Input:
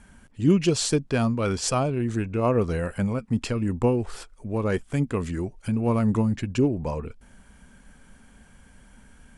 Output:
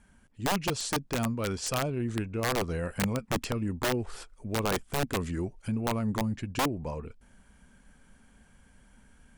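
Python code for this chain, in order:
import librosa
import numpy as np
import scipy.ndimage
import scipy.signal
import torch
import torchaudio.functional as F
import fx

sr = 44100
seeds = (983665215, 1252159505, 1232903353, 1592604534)

y = fx.rider(x, sr, range_db=3, speed_s=0.5)
y = (np.mod(10.0 ** (15.5 / 20.0) * y + 1.0, 2.0) - 1.0) / 10.0 ** (15.5 / 20.0)
y = F.gain(torch.from_numpy(y), -6.0).numpy()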